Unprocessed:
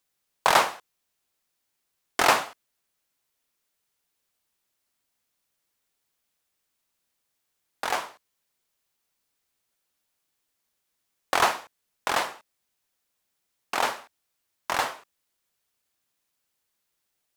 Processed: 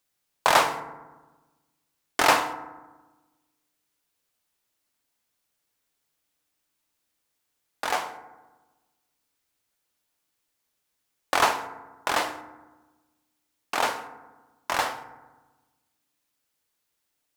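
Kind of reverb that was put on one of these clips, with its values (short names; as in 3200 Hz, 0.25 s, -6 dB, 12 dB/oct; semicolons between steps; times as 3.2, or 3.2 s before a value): FDN reverb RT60 1.2 s, low-frequency decay 1.35×, high-frequency decay 0.4×, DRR 8.5 dB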